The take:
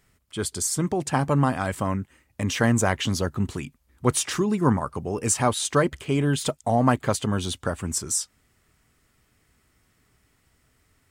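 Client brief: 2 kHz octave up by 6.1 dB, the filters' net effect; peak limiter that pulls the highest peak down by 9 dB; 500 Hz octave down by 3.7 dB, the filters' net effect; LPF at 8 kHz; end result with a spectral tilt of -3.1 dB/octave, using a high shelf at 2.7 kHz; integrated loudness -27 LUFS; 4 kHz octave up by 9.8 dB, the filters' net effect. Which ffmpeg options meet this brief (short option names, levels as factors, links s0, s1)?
-af "lowpass=8000,equalizer=f=500:t=o:g=-5.5,equalizer=f=2000:t=o:g=4,highshelf=f=2700:g=9,equalizer=f=4000:t=o:g=4,volume=0.668,alimiter=limit=0.178:level=0:latency=1"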